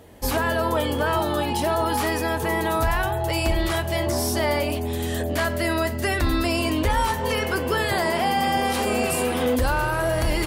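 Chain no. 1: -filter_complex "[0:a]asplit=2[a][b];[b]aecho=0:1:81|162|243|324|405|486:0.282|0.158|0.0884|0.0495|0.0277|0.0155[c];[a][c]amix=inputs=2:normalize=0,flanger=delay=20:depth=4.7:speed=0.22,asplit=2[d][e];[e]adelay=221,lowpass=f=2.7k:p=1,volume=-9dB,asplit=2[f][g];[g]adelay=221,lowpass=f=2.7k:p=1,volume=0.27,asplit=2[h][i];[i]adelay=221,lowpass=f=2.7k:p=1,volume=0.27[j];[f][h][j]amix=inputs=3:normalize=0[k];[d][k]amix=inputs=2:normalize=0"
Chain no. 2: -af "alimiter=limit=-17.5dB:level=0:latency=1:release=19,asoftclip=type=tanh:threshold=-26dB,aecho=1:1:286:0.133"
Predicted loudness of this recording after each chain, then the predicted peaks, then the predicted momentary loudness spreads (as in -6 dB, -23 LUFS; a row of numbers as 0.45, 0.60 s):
-25.0, -30.0 LUFS; -11.5, -25.0 dBFS; 3, 1 LU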